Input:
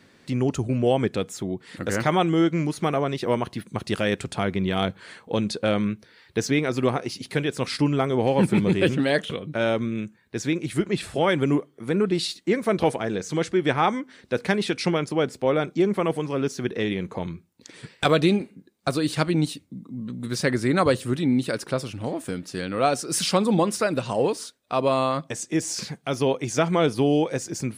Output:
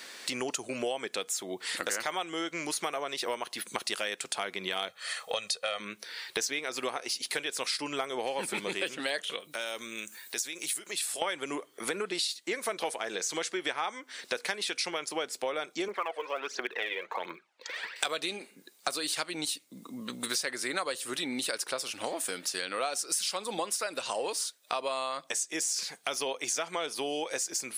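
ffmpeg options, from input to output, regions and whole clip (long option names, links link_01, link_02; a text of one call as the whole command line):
ffmpeg -i in.wav -filter_complex "[0:a]asettb=1/sr,asplit=3[link_01][link_02][link_03];[link_01]atrim=end=4.884[link_04];[link_02]atrim=start=4.88:end=5.8,asetpts=PTS-STARTPTS,afade=type=in:duration=0.004:curve=qsin,afade=type=out:start_time=0.916:duration=0.004:curve=qsin,highpass=47,equalizer=frequency=270:width_type=o:width=1.2:gain=-13.5,aecho=1:1:1.6:0.67,atrim=end_sample=40572[link_05];[link_03]atrim=start=5.796[link_06];[link_04][link_05]acrossfade=duration=0.004:curve1=hsin:curve2=qsin[link_07];[link_07][link_06]acrossfade=duration=0.004:curve1=qsin:curve2=hsin,asettb=1/sr,asplit=3[link_08][link_09][link_10];[link_08]atrim=end=9.404[link_11];[link_09]atrim=start=9.4:end=11.22,asetpts=PTS-STARTPTS,afade=type=in:duration=0.004:curve=qsin,afade=type=out:start_time=1.816:duration=0.004:curve=qsin,aemphasis=mode=production:type=75kf,acompressor=threshold=-43dB:ratio=2.5:attack=3.2:release=140:knee=1:detection=peak[link_12];[link_10]atrim=start=11.216[link_13];[link_11][link_12]acrossfade=duration=0.004:curve1=hsin:curve2=qsin[link_14];[link_14][link_13]acrossfade=duration=0.004:curve1=qsin:curve2=hsin,asettb=1/sr,asplit=3[link_15][link_16][link_17];[link_15]atrim=end=15.884[link_18];[link_16]atrim=start=15.88:end=17.96,asetpts=PTS-STARTPTS,afade=type=in:duration=0.004:curve=qsin,afade=type=out:start_time=2.076:duration=0.004:curve=qsin,highpass=460,lowpass=2200,aphaser=in_gain=1:out_gain=1:delay=2.2:decay=0.6:speed=1.4:type=triangular[link_19];[link_17]atrim=start=17.956[link_20];[link_18][link_19]acrossfade=duration=0.004:curve1=hsin:curve2=qsin[link_21];[link_21][link_20]acrossfade=duration=0.004:curve1=qsin:curve2=hsin,highpass=570,highshelf=frequency=3000:gain=11.5,acompressor=threshold=-39dB:ratio=6,volume=8dB" out.wav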